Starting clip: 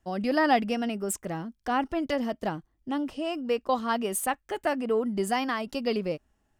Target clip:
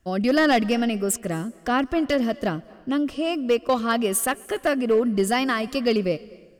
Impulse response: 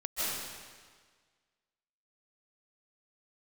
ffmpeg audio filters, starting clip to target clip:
-filter_complex "[0:a]equalizer=f=870:w=6.2:g=-14.5,volume=20dB,asoftclip=hard,volume=-20dB,asplit=2[a][b];[1:a]atrim=start_sample=2205,asetrate=79380,aresample=44100,adelay=129[c];[b][c]afir=irnorm=-1:irlink=0,volume=-22.5dB[d];[a][d]amix=inputs=2:normalize=0,volume=7dB"

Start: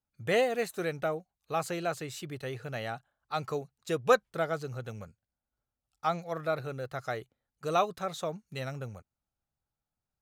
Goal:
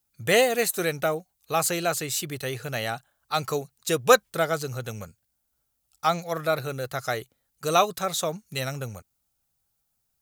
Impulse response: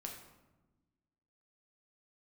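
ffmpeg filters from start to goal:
-af "crystalizer=i=3:c=0,volume=5.5dB"

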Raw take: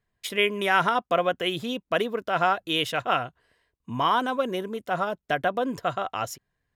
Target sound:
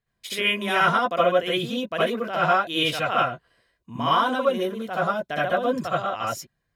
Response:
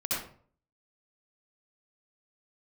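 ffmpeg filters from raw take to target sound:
-filter_complex "[0:a]equalizer=f=4.1k:t=o:w=0.77:g=2.5[a];[1:a]atrim=start_sample=2205,atrim=end_sample=3969[b];[a][b]afir=irnorm=-1:irlink=0,volume=-3dB"

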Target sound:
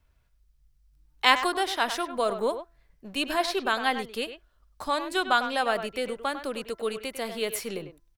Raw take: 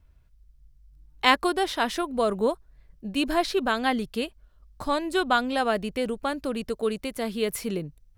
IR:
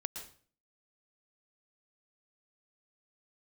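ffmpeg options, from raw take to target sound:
-filter_complex "[0:a]acrossover=split=300|1700[a][b][c];[a]aeval=exprs='clip(val(0),-1,0.00794)':c=same[d];[d][b][c]amix=inputs=3:normalize=0,lowshelf=f=390:g=-9.5,bandreject=f=337.5:t=h:w=4,bandreject=f=675:t=h:w=4,bandreject=f=1.0125k:t=h:w=4,bandreject=f=1.35k:t=h:w=4,bandreject=f=1.6875k:t=h:w=4,bandreject=f=2.025k:t=h:w=4,asplit=2[e][f];[f]adelay=100,highpass=300,lowpass=3.4k,asoftclip=type=hard:threshold=-13.5dB,volume=-10dB[g];[e][g]amix=inputs=2:normalize=0,volume=1dB"

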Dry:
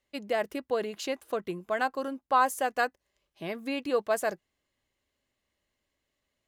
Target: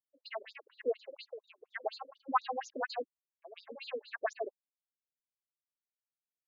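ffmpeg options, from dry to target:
-filter_complex "[0:a]acrossover=split=680|2600[a][b][c];[c]adelay=110[d];[a]adelay=150[e];[e][b][d]amix=inputs=3:normalize=0,anlmdn=0.1,afftfilt=real='re*between(b*sr/1024,340*pow(5200/340,0.5+0.5*sin(2*PI*4.2*pts/sr))/1.41,340*pow(5200/340,0.5+0.5*sin(2*PI*4.2*pts/sr))*1.41)':imag='im*between(b*sr/1024,340*pow(5200/340,0.5+0.5*sin(2*PI*4.2*pts/sr))/1.41,340*pow(5200/340,0.5+0.5*sin(2*PI*4.2*pts/sr))*1.41)':win_size=1024:overlap=0.75,volume=1.5dB"

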